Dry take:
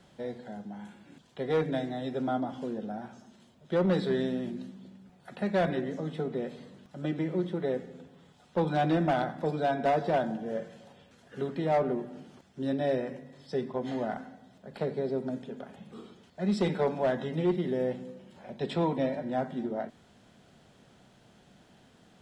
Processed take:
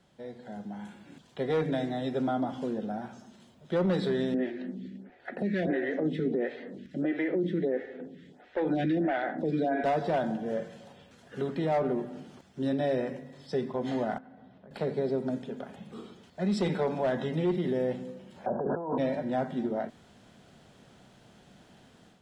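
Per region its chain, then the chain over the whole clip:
4.34–9.84 EQ curve 130 Hz 0 dB, 290 Hz +12 dB, 740 Hz +5 dB, 1100 Hz -5 dB, 1800 Hz +14 dB, 2600 Hz +6 dB, 10000 Hz -8 dB + photocell phaser 1.5 Hz
14.18–14.71 HPF 55 Hz + compressor 10:1, threshold -49 dBFS + air absorption 320 m
18.46–18.98 bell 680 Hz +13 dB 2.3 oct + negative-ratio compressor -31 dBFS + brick-wall FIR low-pass 1700 Hz
whole clip: AGC gain up to 9 dB; limiter -14.5 dBFS; gain -6.5 dB

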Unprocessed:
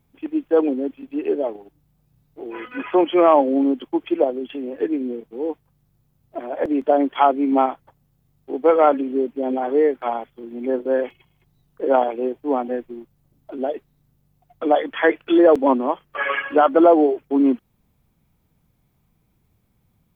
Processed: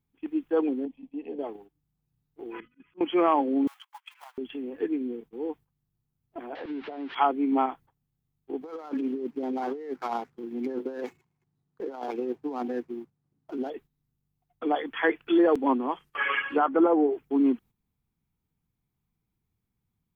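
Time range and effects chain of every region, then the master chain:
0.85–1.39 LPF 1900 Hz 6 dB/oct + fixed phaser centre 370 Hz, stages 6
2.6–3.01 EQ curve 190 Hz 0 dB, 720 Hz -27 dB, 2600 Hz -14 dB + auto swell 0.114 s
3.67–4.38 G.711 law mismatch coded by A + steep high-pass 910 Hz 48 dB/oct + upward compressor, threshold -39 dBFS
6.55–7.15 switching spikes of -12 dBFS + Bessel low-pass 2000 Hz, order 8 + compressor, threshold -25 dBFS
8.61–13.7 median filter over 15 samples + negative-ratio compressor -25 dBFS + HPF 120 Hz
15.91–17.13 treble ducked by the level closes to 1500 Hz, closed at -12 dBFS + high shelf 3100 Hz +9.5 dB + notch 690 Hz, Q 20
whole clip: gate -40 dBFS, range -10 dB; bell 590 Hz -11.5 dB 0.34 oct; gain -5.5 dB

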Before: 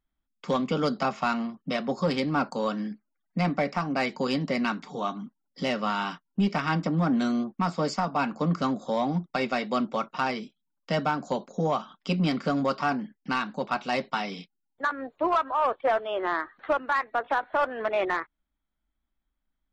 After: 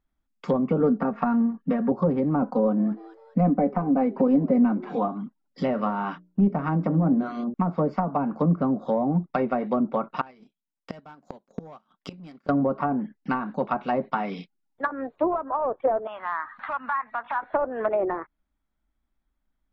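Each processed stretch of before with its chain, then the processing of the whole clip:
0.8–1.92 bell 1700 Hz +12.5 dB 0.21 oct + notch 680 Hz, Q 7.8 + comb 4.3 ms, depth 73%
2.42–5.08 comb 4 ms, depth 87% + frequency-shifting echo 0.205 s, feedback 40%, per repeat +120 Hz, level -22.5 dB
5.72–7.54 high shelf 4400 Hz +7.5 dB + notches 60/120/180/240/300/360/420/480/540/600 Hz + mismatched tape noise reduction decoder only
10.21–12.49 transient shaper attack -5 dB, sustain -12 dB + sample leveller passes 1 + flipped gate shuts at -23 dBFS, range -24 dB
16.07–17.42 compressor 2.5:1, threshold -44 dBFS + EQ curve 140 Hz 0 dB, 240 Hz +5 dB, 370 Hz -17 dB, 980 Hz +13 dB, 1500 Hz +10 dB, 3600 Hz +6 dB
whole clip: notch 3100 Hz, Q 29; treble ducked by the level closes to 620 Hz, closed at -22 dBFS; high shelf 3200 Hz -9.5 dB; gain +4.5 dB

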